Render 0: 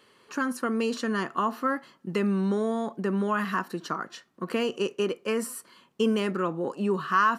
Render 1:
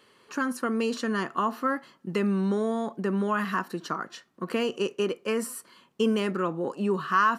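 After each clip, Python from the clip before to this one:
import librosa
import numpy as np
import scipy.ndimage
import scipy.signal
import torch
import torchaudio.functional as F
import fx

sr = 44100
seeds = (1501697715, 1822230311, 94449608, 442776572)

y = x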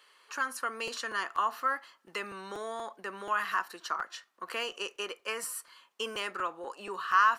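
y = scipy.signal.sosfilt(scipy.signal.butter(2, 880.0, 'highpass', fs=sr, output='sos'), x)
y = fx.buffer_crackle(y, sr, first_s=0.87, period_s=0.24, block=256, kind='repeat')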